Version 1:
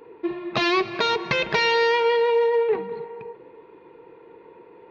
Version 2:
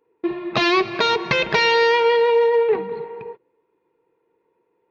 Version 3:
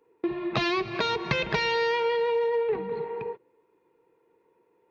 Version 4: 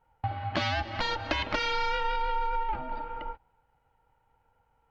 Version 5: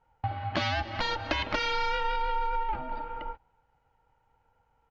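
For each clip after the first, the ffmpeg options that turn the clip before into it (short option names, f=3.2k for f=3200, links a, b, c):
-af "agate=range=-24dB:threshold=-38dB:ratio=16:detection=peak,volume=3.5dB"
-filter_complex "[0:a]acrossover=split=160[a][b];[b]acompressor=threshold=-31dB:ratio=2.5[c];[a][c]amix=inputs=2:normalize=0,volume=1.5dB"
-af "aeval=exprs='val(0)*sin(2*PI*450*n/s)':c=same"
-af "aresample=16000,aresample=44100"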